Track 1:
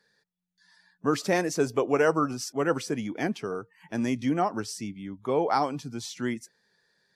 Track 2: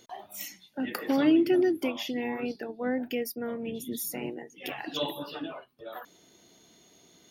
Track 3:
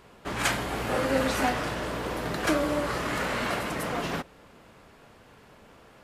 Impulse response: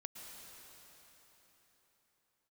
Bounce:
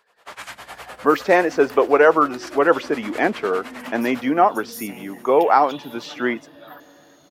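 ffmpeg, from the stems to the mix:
-filter_complex "[0:a]highpass=410,lowpass=2300,volume=1.19[s0];[1:a]lowshelf=f=350:g=10.5,acompressor=threshold=0.0447:ratio=6,adelay=750,volume=0.211,asplit=2[s1][s2];[s2]volume=0.631[s3];[2:a]tremolo=f=9.8:d=0.93,volume=0.473,asplit=2[s4][s5];[s5]volume=0.133[s6];[s1][s4]amix=inputs=2:normalize=0,highpass=f=510:w=0.5412,highpass=f=510:w=1.3066,acompressor=threshold=0.00501:ratio=12,volume=1[s7];[3:a]atrim=start_sample=2205[s8];[s3][s6]amix=inputs=2:normalize=0[s9];[s9][s8]afir=irnorm=-1:irlink=0[s10];[s0][s7][s10]amix=inputs=3:normalize=0,dynaudnorm=f=140:g=3:m=4.22"

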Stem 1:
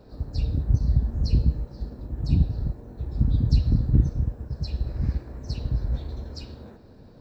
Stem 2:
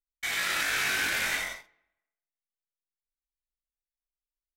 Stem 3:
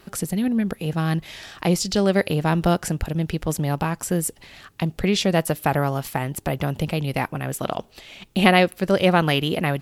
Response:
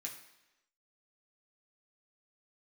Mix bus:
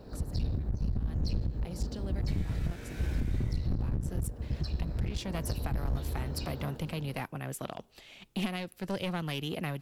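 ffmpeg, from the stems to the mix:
-filter_complex "[0:a]volume=1.19[s0];[1:a]acompressor=threshold=0.0178:ratio=6,adelay=2050,volume=0.237[s1];[2:a]acrossover=split=250|3000[s2][s3][s4];[s3]acompressor=threshold=0.0501:ratio=2[s5];[s2][s5][s4]amix=inputs=3:normalize=0,volume=0.316,afade=t=in:st=3.8:d=0.48:silence=0.298538[s6];[s0][s6]amix=inputs=2:normalize=0,aeval=exprs='clip(val(0),-1,0.0398)':c=same,alimiter=limit=0.168:level=0:latency=1:release=86,volume=1[s7];[s1][s7]amix=inputs=2:normalize=0,alimiter=limit=0.0841:level=0:latency=1:release=321"

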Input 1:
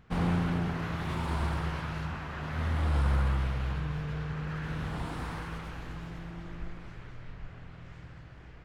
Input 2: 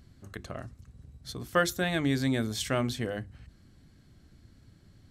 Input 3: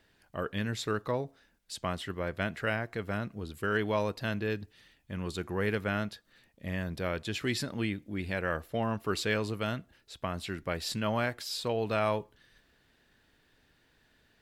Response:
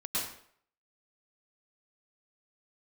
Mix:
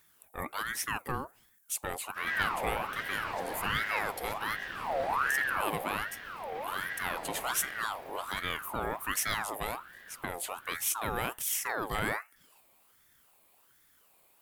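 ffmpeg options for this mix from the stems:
-filter_complex "[0:a]adelay=2050,volume=0.501,asplit=2[s0][s1];[s1]volume=0.708[s2];[1:a]adelay=1700,volume=0.119[s3];[2:a]aexciter=amount=10.8:drive=4.8:freq=7900,volume=0.944,asplit=2[s4][s5];[s5]apad=whole_len=471645[s6];[s0][s6]sidechaincompress=threshold=0.00631:ratio=8:attack=16:release=459[s7];[3:a]atrim=start_sample=2205[s8];[s2][s8]afir=irnorm=-1:irlink=0[s9];[s7][s3][s4][s9]amix=inputs=4:normalize=0,aeval=exprs='val(0)*sin(2*PI*1200*n/s+1200*0.5/1.3*sin(2*PI*1.3*n/s))':c=same"

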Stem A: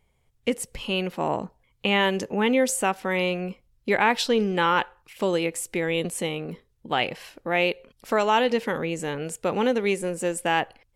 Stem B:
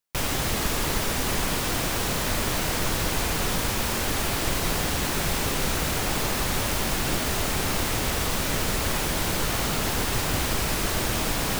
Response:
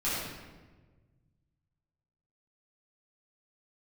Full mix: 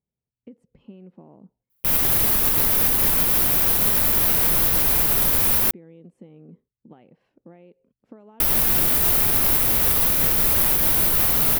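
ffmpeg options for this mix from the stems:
-filter_complex "[0:a]agate=range=0.501:threshold=0.00251:ratio=16:detection=peak,acompressor=threshold=0.0355:ratio=8,bandpass=f=210:t=q:w=1.3:csg=0,volume=0.473[s0];[1:a]aexciter=amount=6.8:drive=3.3:freq=10000,adelay=1700,volume=1.06,asplit=3[s1][s2][s3];[s1]atrim=end=5.71,asetpts=PTS-STARTPTS,afade=t=out:st=5.706:d=0.004:c=hsin[s4];[s2]atrim=start=5.71:end=8.4,asetpts=PTS-STARTPTS,volume=0[s5];[s3]atrim=start=8.4,asetpts=PTS-STARTPTS,afade=t=in:d=0.004:c=hsin[s6];[s4][s5][s6]concat=n=3:v=0:a=1[s7];[s0][s7]amix=inputs=2:normalize=0,alimiter=limit=0.398:level=0:latency=1:release=86"

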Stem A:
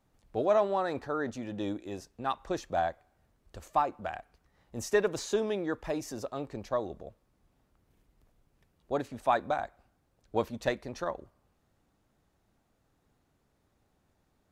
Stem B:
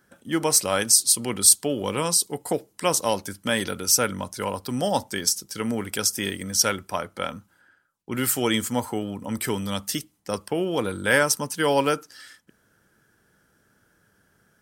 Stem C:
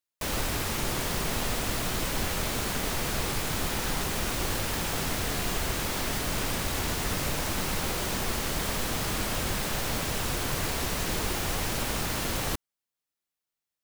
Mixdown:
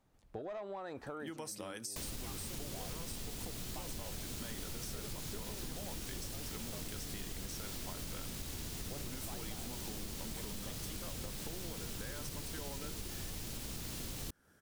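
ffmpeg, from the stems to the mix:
-filter_complex "[0:a]asoftclip=type=tanh:threshold=0.0891,volume=0.841[s0];[1:a]alimiter=limit=0.237:level=0:latency=1:release=15,adelay=950,volume=0.668[s1];[2:a]acrossover=split=390|3000[s2][s3][s4];[s3]acompressor=threshold=0.00562:ratio=6[s5];[s2][s5][s4]amix=inputs=3:normalize=0,adelay=1750,volume=0.794[s6];[s0][s1]amix=inputs=2:normalize=0,acompressor=threshold=0.0141:ratio=6,volume=1[s7];[s6][s7]amix=inputs=2:normalize=0,acompressor=threshold=0.01:ratio=6"

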